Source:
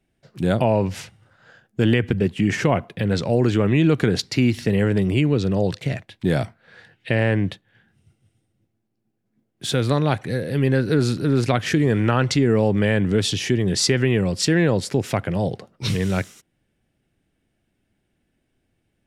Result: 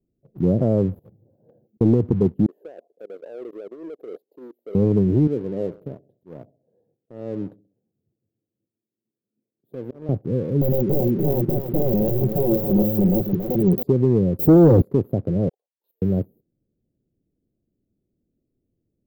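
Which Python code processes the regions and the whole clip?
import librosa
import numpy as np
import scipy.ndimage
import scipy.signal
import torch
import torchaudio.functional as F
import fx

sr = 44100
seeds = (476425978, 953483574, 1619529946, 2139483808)

y = fx.chain(x, sr, fx.highpass(hz=230.0, slope=6),
    fx.over_compress(threshold_db=-43.0, ratio=-0.5), at=(0.99, 1.81))
y = fx.chain(y, sr, fx.highpass(hz=500.0, slope=24),
    fx.level_steps(step_db=17), at=(2.46, 4.75))
y = fx.chain(y, sr, fx.highpass(hz=620.0, slope=6),
    fx.auto_swell(attack_ms=340.0),
    fx.echo_feedback(ms=66, feedback_pct=47, wet_db=-16.5), at=(5.27, 10.09))
y = fx.chain(y, sr, fx.overflow_wrap(gain_db=13.0),
    fx.comb(ms=5.4, depth=0.66),
    fx.echo_single(ms=279, db=-8.0), at=(10.61, 13.83))
y = fx.chain(y, sr, fx.leveller(passes=5),
    fx.notch_comb(f0_hz=200.0), at=(14.39, 14.82))
y = fx.chain(y, sr, fx.highpass(hz=1300.0, slope=24),
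    fx.level_steps(step_db=17), at=(15.49, 16.02))
y = scipy.signal.sosfilt(scipy.signal.cheby2(4, 50, [1200.0, 9400.0], 'bandstop', fs=sr, output='sos'), y)
y = fx.low_shelf(y, sr, hz=110.0, db=-5.0)
y = fx.leveller(y, sr, passes=1)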